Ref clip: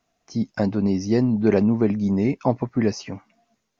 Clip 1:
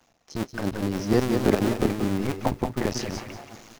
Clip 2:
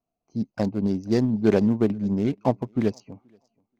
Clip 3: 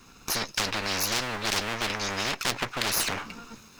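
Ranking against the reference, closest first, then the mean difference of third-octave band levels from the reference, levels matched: 2, 1, 3; 3.5, 13.0, 19.5 decibels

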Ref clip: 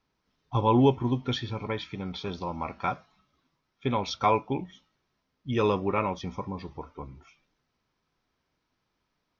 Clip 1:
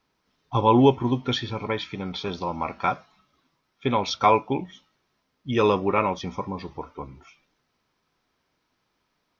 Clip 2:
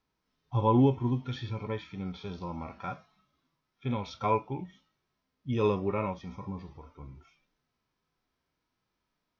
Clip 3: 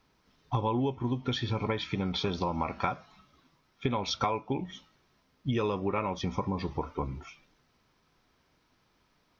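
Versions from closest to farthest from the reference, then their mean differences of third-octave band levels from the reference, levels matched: 1, 2, 3; 1.0, 2.0, 4.5 decibels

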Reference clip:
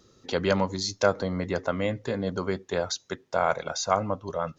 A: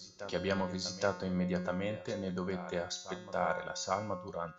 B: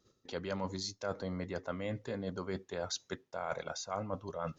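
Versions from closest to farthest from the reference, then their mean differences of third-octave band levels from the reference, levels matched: B, A; 2.5, 4.0 decibels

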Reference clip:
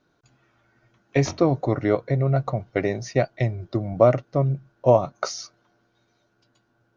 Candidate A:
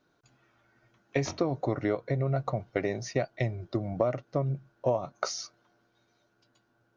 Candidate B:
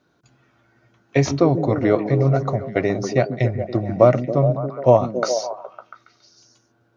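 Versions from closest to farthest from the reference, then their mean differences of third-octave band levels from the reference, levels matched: A, B; 2.5, 3.5 decibels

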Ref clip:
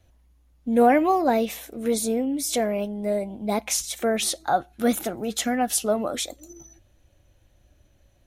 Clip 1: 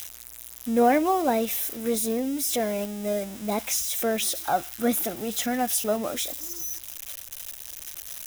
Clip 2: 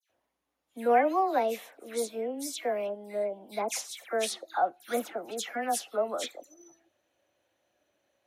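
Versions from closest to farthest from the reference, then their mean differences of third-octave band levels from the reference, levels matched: 1, 2; 6.5, 8.5 decibels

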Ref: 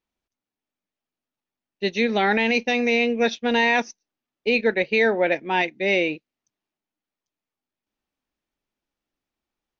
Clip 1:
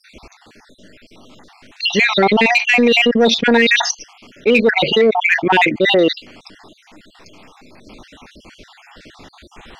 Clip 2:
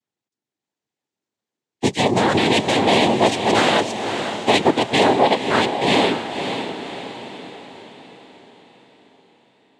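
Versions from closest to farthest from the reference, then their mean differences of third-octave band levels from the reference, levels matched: 1, 2; 8.5, 13.0 decibels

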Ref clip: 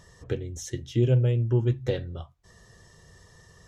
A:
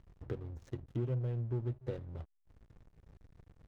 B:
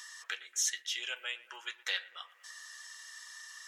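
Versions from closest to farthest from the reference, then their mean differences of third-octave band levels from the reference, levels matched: A, B; 4.5, 17.0 decibels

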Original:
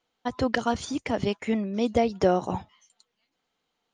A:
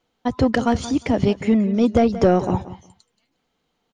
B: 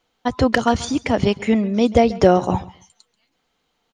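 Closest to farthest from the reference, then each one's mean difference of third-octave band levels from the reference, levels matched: B, A; 1.5, 3.5 decibels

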